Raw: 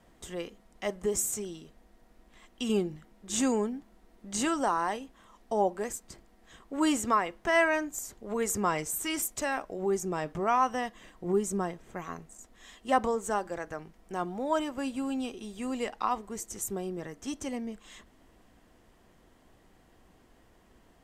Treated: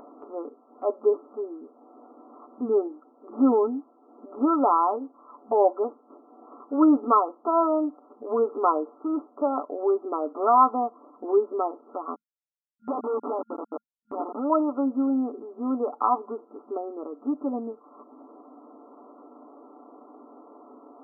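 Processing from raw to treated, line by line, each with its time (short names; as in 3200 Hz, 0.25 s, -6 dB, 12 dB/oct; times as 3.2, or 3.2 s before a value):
12.14–14.5 Schmitt trigger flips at -34 dBFS
whole clip: FFT band-pass 220–1400 Hz; comb 6.9 ms, depth 56%; upward compressor, threshold -45 dBFS; gain +6 dB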